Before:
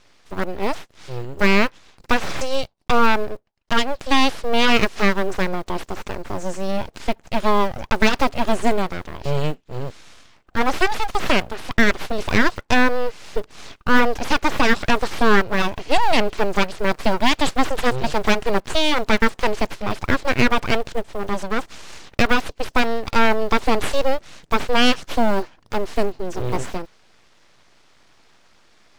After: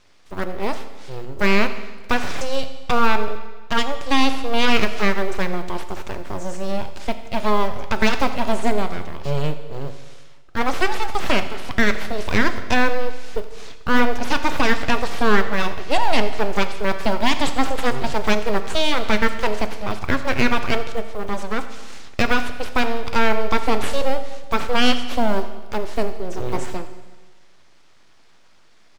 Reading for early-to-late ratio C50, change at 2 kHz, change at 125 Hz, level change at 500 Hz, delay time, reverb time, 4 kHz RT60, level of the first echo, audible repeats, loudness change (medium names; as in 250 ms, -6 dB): 10.5 dB, -1.5 dB, -1.0 dB, -1.5 dB, 86 ms, 1.3 s, 1.3 s, -18.5 dB, 1, -1.5 dB